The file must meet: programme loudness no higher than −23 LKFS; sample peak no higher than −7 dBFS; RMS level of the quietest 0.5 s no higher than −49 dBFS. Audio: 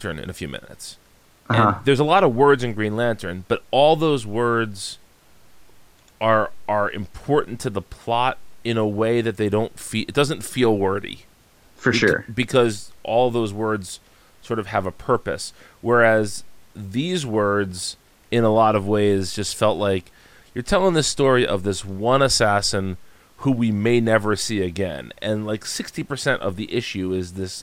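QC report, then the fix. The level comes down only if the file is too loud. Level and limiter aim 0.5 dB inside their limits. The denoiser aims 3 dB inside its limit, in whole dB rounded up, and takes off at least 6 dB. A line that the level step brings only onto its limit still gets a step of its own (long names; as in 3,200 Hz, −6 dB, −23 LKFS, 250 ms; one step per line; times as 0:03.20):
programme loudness −21.0 LKFS: out of spec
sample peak −4.0 dBFS: out of spec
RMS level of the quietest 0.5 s −54 dBFS: in spec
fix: level −2.5 dB
brickwall limiter −7.5 dBFS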